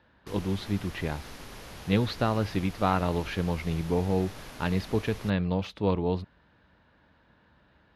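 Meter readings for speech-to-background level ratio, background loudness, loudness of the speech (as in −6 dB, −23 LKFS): 15.0 dB, −44.5 LKFS, −29.5 LKFS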